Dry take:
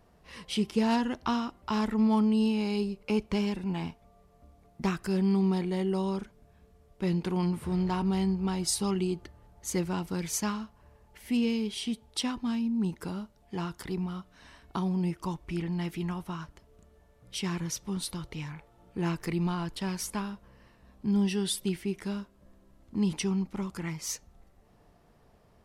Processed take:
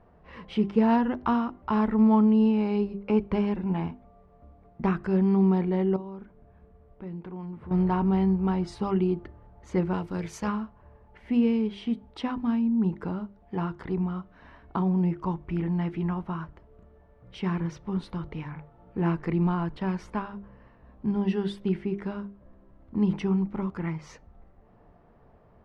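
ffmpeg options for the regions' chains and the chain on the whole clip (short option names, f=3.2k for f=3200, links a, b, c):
-filter_complex "[0:a]asettb=1/sr,asplit=3[a][b][c];[a]atrim=end=5.964[d];[b]atrim=start=5.96:end=7.71,asetpts=PTS-STARTPTS,afade=t=in:d=0.004:c=qsin,afade=t=out:st=1.746:d=0.004:c=qsin,lowpass=f=3.8k:p=1,acompressor=threshold=-50dB:ratio=2:attack=3.2:release=140:knee=1:detection=peak[e];[c]atrim=start=7.706[f];[d][e]acrossfade=d=0.004:c1=hsin:c2=qsin[g];[g][f]acrossfade=d=0.004:c1=qsin:c2=hsin,asettb=1/sr,asplit=3[h][i][j];[h]atrim=end=9.934[k];[i]atrim=start=9.93:end=10.48,asetpts=PTS-STARTPTS,afade=t=in:d=0.004:c=qsin,afade=t=out:st=0.546:d=0.004:c=qsin,aemphasis=mode=production:type=75fm,tremolo=f=280:d=0.519[l];[j]atrim=start=10.476[m];[k][l]acrossfade=d=0.004:c1=hsin:c2=qsin[n];[n][m]acrossfade=d=0.004:c1=qsin:c2=hsin,lowpass=1.6k,bandreject=f=50:t=h:w=6,bandreject=f=100:t=h:w=6,bandreject=f=150:t=h:w=6,bandreject=f=200:t=h:w=6,bandreject=f=250:t=h:w=6,bandreject=f=300:t=h:w=6,bandreject=f=350:t=h:w=6,bandreject=f=400:t=h:w=6,volume=5dB"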